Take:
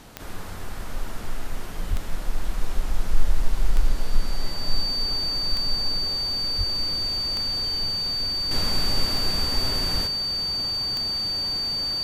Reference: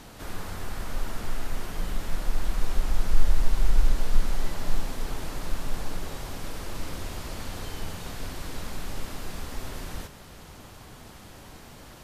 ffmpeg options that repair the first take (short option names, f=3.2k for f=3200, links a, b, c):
-filter_complex "[0:a]adeclick=t=4,bandreject=f=4.6k:w=30,asplit=3[a][b][c];[a]afade=t=out:st=1.89:d=0.02[d];[b]highpass=f=140:w=0.5412,highpass=f=140:w=1.3066,afade=t=in:st=1.89:d=0.02,afade=t=out:st=2.01:d=0.02[e];[c]afade=t=in:st=2.01:d=0.02[f];[d][e][f]amix=inputs=3:normalize=0,asplit=3[g][h][i];[g]afade=t=out:st=6.57:d=0.02[j];[h]highpass=f=140:w=0.5412,highpass=f=140:w=1.3066,afade=t=in:st=6.57:d=0.02,afade=t=out:st=6.69:d=0.02[k];[i]afade=t=in:st=6.69:d=0.02[l];[j][k][l]amix=inputs=3:normalize=0,asetnsamples=n=441:p=0,asendcmd='8.51 volume volume -8dB',volume=0dB"